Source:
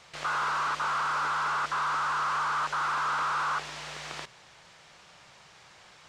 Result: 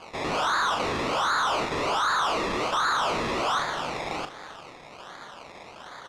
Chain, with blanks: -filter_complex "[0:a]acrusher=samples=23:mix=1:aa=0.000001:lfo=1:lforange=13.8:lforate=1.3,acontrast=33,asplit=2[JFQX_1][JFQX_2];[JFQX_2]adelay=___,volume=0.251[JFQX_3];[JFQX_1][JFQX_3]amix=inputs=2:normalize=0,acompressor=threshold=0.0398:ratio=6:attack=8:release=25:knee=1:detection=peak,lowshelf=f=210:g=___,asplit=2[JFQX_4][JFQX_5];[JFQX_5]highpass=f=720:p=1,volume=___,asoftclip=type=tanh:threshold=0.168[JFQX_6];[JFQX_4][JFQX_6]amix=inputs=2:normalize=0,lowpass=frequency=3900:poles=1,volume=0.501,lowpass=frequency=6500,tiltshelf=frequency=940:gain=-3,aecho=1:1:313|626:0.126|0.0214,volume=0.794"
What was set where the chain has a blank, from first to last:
40, 3.5, 6.31